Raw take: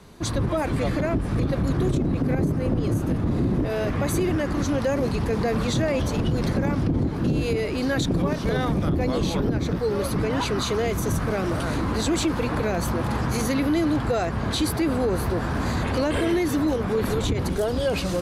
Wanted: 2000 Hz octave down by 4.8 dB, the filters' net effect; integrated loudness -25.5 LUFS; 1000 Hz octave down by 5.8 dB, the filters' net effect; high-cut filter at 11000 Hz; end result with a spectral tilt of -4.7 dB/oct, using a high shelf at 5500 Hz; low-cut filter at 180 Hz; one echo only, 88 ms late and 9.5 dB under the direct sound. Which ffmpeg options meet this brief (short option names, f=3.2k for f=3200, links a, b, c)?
-af "highpass=180,lowpass=11k,equalizer=f=1k:t=o:g=-7,equalizer=f=2k:t=o:g=-5,highshelf=f=5.5k:g=9,aecho=1:1:88:0.335,volume=0.5dB"